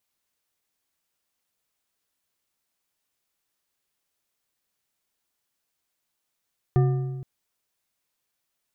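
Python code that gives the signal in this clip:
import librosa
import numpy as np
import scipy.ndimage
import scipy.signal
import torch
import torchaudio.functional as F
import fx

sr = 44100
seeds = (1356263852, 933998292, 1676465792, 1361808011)

y = fx.strike_metal(sr, length_s=0.47, level_db=-15, body='bar', hz=134.0, decay_s=1.5, tilt_db=7.5, modes=5)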